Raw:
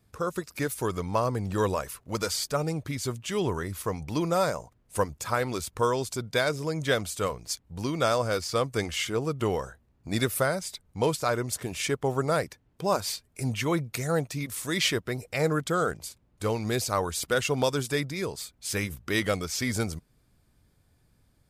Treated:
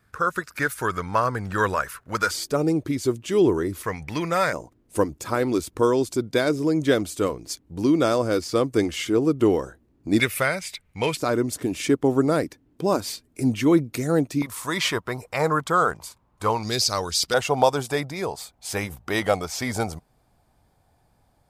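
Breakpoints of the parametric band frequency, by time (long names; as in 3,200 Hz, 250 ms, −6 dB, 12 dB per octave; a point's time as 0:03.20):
parametric band +15 dB 0.91 octaves
1,500 Hz
from 0:02.31 330 Hz
from 0:03.83 1,900 Hz
from 0:04.53 310 Hz
from 0:10.20 2,300 Hz
from 0:11.17 290 Hz
from 0:14.42 1,000 Hz
from 0:16.63 4,900 Hz
from 0:17.34 780 Hz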